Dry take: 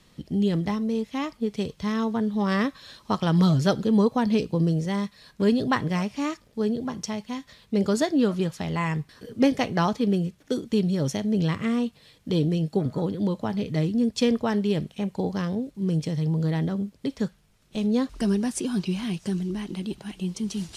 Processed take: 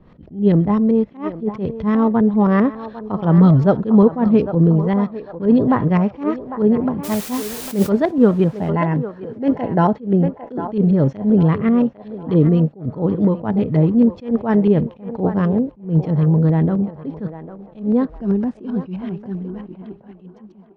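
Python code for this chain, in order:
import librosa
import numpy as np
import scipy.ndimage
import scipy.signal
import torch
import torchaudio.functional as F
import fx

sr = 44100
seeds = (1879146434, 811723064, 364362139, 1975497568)

p1 = fx.fade_out_tail(x, sr, length_s=4.99)
p2 = scipy.signal.sosfilt(scipy.signal.butter(2, 8000.0, 'lowpass', fs=sr, output='sos'), p1)
p3 = fx.rider(p2, sr, range_db=4, speed_s=2.0)
p4 = p2 + (p3 * librosa.db_to_amplitude(-1.0))
p5 = fx.filter_lfo_lowpass(p4, sr, shape='saw_up', hz=7.7, low_hz=600.0, high_hz=1900.0, q=0.75)
p6 = fx.quant_dither(p5, sr, seeds[0], bits=6, dither='triangular', at=(7.03, 7.88), fade=0.02)
p7 = fx.notch_comb(p6, sr, f0_hz=1200.0, at=(8.57, 10.01))
p8 = p7 + fx.echo_banded(p7, sr, ms=801, feedback_pct=41, hz=850.0, wet_db=-10.0, dry=0)
p9 = fx.attack_slew(p8, sr, db_per_s=180.0)
y = p9 * librosa.db_to_amplitude(4.5)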